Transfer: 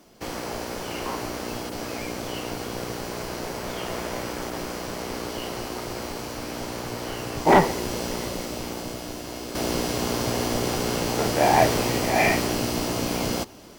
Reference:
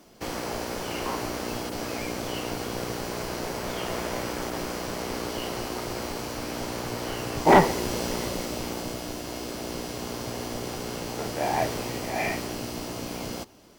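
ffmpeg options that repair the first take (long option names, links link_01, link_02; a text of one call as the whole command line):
ffmpeg -i in.wav -af "asetnsamples=nb_out_samples=441:pad=0,asendcmd='9.55 volume volume -8dB',volume=0dB" out.wav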